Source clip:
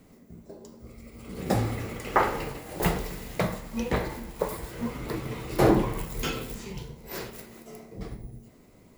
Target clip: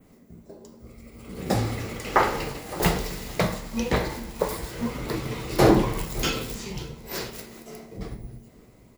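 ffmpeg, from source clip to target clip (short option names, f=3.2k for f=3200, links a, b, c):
-filter_complex "[0:a]adynamicequalizer=threshold=0.00282:dfrequency=5000:dqfactor=0.93:tfrequency=5000:tqfactor=0.93:attack=5:release=100:ratio=0.375:range=3:mode=boostabove:tftype=bell,dynaudnorm=f=740:g=5:m=3.5dB,asplit=2[a][b];[b]adelay=565,lowpass=f=4.6k:p=1,volume=-21dB,asplit=2[c][d];[d]adelay=565,lowpass=f=4.6k:p=1,volume=0.31[e];[a][c][e]amix=inputs=3:normalize=0"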